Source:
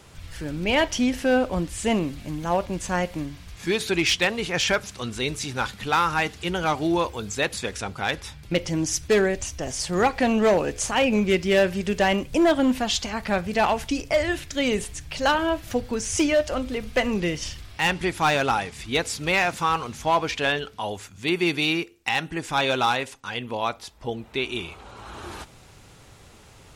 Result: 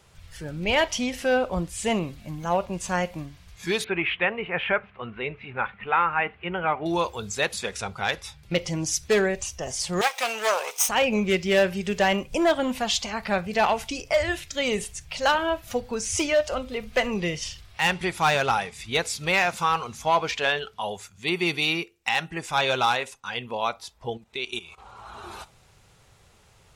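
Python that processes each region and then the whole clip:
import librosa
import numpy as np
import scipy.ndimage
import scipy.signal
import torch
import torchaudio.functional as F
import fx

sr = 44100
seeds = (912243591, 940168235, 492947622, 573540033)

y = fx.chain(x, sr, fx.steep_lowpass(hz=2700.0, slope=36),
    fx.low_shelf(hz=160.0, db=-6.0), at=(3.84, 6.86))
y = fx.chain(y, sr, fx.lower_of_two(delay_ms=0.35),
    fx.cheby1_highpass(hz=760.0, order=2),
    fx.high_shelf(hz=3900.0, db=10.5), at=(10.01, 10.89))
y = fx.chain(y, sr, fx.level_steps(step_db=15),
    fx.peak_eq(hz=7100.0, db=8.5, octaves=1.5), at=(24.17, 24.78))
y = fx.noise_reduce_blind(y, sr, reduce_db=7)
y = fx.peak_eq(y, sr, hz=280.0, db=-9.0, octaves=0.55)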